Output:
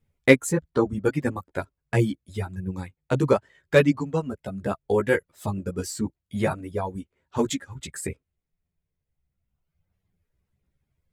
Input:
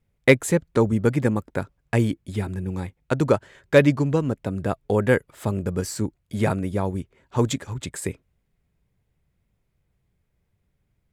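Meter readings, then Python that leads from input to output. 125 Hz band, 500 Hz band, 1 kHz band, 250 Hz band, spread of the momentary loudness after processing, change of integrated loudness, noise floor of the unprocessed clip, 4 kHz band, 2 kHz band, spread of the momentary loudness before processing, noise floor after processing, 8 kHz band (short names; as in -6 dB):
-4.5 dB, -1.5 dB, -1.5 dB, -2.5 dB, 14 LU, -2.0 dB, -73 dBFS, -1.0 dB, -1.0 dB, 12 LU, -83 dBFS, -1.0 dB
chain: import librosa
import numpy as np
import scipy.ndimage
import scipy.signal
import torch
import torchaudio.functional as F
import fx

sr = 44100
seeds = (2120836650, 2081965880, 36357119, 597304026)

y = fx.dereverb_blind(x, sr, rt60_s=2.0)
y = fx.chorus_voices(y, sr, voices=2, hz=0.75, base_ms=13, depth_ms=2.1, mix_pct=45)
y = y * 10.0 ** (2.0 / 20.0)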